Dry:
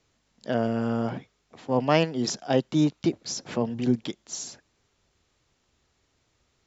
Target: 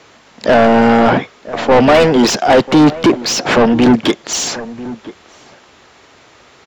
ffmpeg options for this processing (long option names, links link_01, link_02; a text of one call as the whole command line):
ffmpeg -i in.wav -filter_complex "[0:a]asplit=2[link_01][link_02];[link_02]asetrate=22050,aresample=44100,atempo=2,volume=-16dB[link_03];[link_01][link_03]amix=inputs=2:normalize=0,asplit=2[link_04][link_05];[link_05]highpass=frequency=720:poles=1,volume=32dB,asoftclip=type=tanh:threshold=-4.5dB[link_06];[link_04][link_06]amix=inputs=2:normalize=0,lowpass=frequency=1600:poles=1,volume=-6dB,acontrast=81,asplit=2[link_07][link_08];[link_08]adelay=991.3,volume=-16dB,highshelf=frequency=4000:gain=-22.3[link_09];[link_07][link_09]amix=inputs=2:normalize=0" out.wav